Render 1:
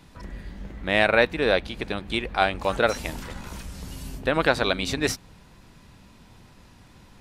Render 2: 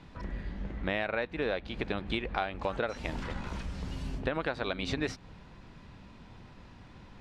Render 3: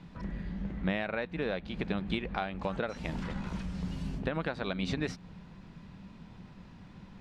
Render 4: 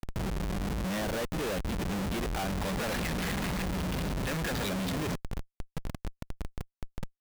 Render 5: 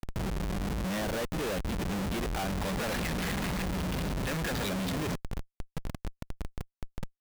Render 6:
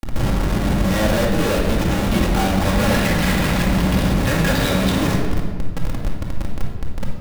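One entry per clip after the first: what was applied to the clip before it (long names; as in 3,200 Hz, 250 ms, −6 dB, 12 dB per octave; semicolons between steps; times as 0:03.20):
Bessel low-pass filter 3,300 Hz, order 2; downward compressor 10 to 1, threshold −28 dBFS, peak gain reduction 14.5 dB
parametric band 180 Hz +11 dB 0.56 octaves; level −2.5 dB
gain on a spectral selection 0:02.62–0:04.69, 1,600–5,600 Hz +11 dB; comparator with hysteresis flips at −41.5 dBFS; level +4 dB
no processing that can be heard
rectangular room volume 1,500 cubic metres, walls mixed, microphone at 2.3 metres; level +9 dB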